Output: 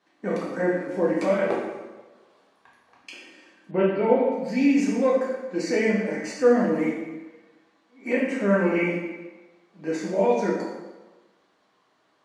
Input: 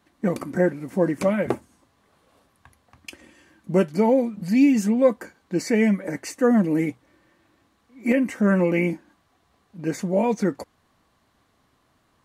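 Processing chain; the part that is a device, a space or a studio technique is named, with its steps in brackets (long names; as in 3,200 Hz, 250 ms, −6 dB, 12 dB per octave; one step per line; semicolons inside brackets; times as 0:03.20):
supermarket ceiling speaker (band-pass filter 290–6,000 Hz; convolution reverb RT60 1.2 s, pre-delay 5 ms, DRR −5 dB)
0:03.71–0:04.32: Butterworth low-pass 3,600 Hz 36 dB per octave
level −5 dB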